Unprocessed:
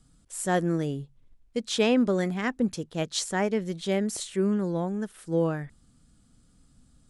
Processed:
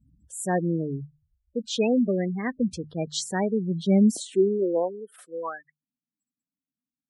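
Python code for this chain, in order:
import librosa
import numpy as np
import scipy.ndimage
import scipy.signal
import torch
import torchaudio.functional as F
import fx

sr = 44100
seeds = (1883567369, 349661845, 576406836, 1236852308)

y = fx.spec_gate(x, sr, threshold_db=-15, keep='strong')
y = fx.hum_notches(y, sr, base_hz=50, count=3)
y = fx.filter_sweep_highpass(y, sr, from_hz=68.0, to_hz=1300.0, start_s=3.05, end_s=5.74, q=3.6)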